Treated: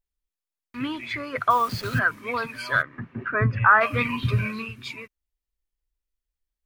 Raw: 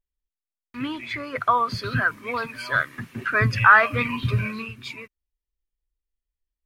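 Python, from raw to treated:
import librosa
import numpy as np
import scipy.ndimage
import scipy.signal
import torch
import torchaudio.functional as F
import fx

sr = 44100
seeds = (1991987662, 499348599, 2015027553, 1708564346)

y = fx.delta_hold(x, sr, step_db=-35.0, at=(1.5, 1.99))
y = fx.lowpass(y, sr, hz=1400.0, slope=12, at=(2.81, 3.8), fade=0.02)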